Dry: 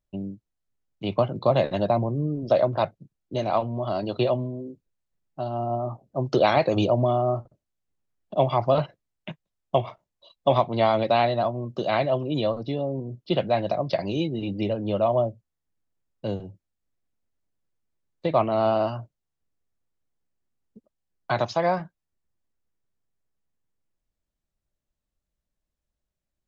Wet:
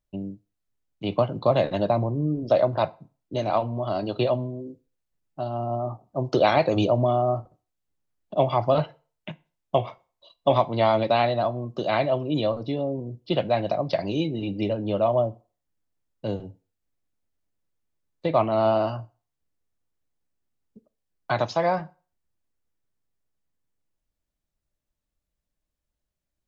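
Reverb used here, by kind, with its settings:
feedback delay network reverb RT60 0.38 s, low-frequency decay 0.8×, high-frequency decay 0.85×, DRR 14 dB

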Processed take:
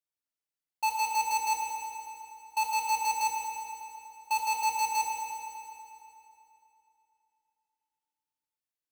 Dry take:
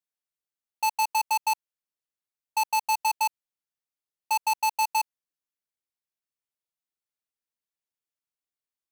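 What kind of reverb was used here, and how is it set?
feedback delay network reverb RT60 3 s, high-frequency decay 0.85×, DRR −2 dB
level −6.5 dB

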